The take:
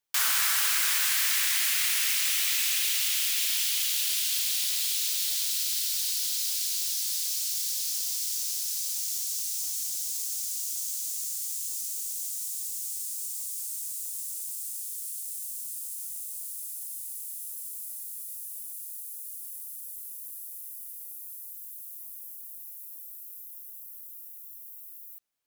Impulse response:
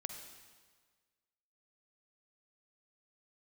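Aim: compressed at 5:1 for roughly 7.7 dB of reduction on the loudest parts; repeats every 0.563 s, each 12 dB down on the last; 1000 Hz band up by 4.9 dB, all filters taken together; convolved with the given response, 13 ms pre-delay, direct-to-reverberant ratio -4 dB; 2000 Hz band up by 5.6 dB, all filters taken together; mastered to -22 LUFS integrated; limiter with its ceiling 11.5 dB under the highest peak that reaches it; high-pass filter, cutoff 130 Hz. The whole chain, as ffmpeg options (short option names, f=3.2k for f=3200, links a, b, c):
-filter_complex "[0:a]highpass=130,equalizer=f=1k:t=o:g=4,equalizer=f=2k:t=o:g=6,acompressor=threshold=-29dB:ratio=5,alimiter=level_in=2.5dB:limit=-24dB:level=0:latency=1,volume=-2.5dB,aecho=1:1:563|1126|1689:0.251|0.0628|0.0157,asplit=2[a][b];[1:a]atrim=start_sample=2205,adelay=13[c];[b][c]afir=irnorm=-1:irlink=0,volume=5.5dB[d];[a][d]amix=inputs=2:normalize=0,volume=7dB"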